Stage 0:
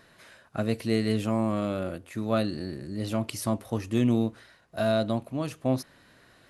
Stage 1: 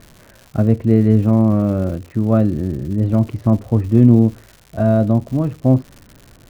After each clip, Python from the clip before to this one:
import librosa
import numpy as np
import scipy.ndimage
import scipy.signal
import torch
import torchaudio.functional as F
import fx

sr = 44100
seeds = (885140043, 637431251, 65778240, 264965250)

y = scipy.signal.sosfilt(scipy.signal.butter(2, 2000.0, 'lowpass', fs=sr, output='sos'), x)
y = fx.tilt_eq(y, sr, slope=-4.0)
y = fx.dmg_crackle(y, sr, seeds[0], per_s=200.0, level_db=-36.0)
y = y * 10.0 ** (4.5 / 20.0)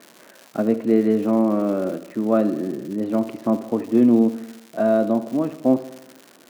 y = scipy.signal.sosfilt(scipy.signal.butter(4, 240.0, 'highpass', fs=sr, output='sos'), x)
y = fx.echo_feedback(y, sr, ms=75, feedback_pct=59, wet_db=-15)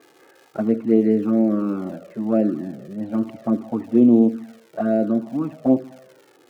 y = fx.env_flanger(x, sr, rest_ms=2.5, full_db=-11.5)
y = fx.high_shelf(y, sr, hz=2600.0, db=-9.5)
y = fx.notch(y, sr, hz=1000.0, q=11.0)
y = y * 10.0 ** (2.0 / 20.0)